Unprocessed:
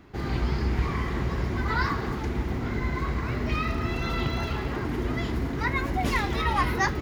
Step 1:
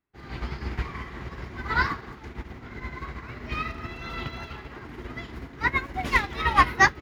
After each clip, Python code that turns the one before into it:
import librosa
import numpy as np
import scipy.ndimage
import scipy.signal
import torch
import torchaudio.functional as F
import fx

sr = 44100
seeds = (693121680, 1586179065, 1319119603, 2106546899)

y = fx.peak_eq(x, sr, hz=2000.0, db=6.5, octaves=2.7)
y = fx.upward_expand(y, sr, threshold_db=-43.0, expansion=2.5)
y = F.gain(torch.from_numpy(y), 4.0).numpy()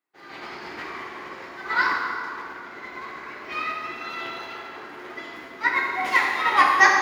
y = scipy.signal.sosfilt(scipy.signal.butter(2, 440.0, 'highpass', fs=sr, output='sos'), x)
y = fx.rev_plate(y, sr, seeds[0], rt60_s=2.4, hf_ratio=0.65, predelay_ms=0, drr_db=-2.5)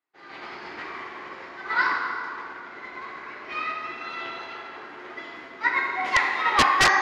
y = fx.low_shelf(x, sr, hz=400.0, db=-4.5)
y = (np.mod(10.0 ** (8.5 / 20.0) * y + 1.0, 2.0) - 1.0) / 10.0 ** (8.5 / 20.0)
y = fx.air_absorb(y, sr, metres=87.0)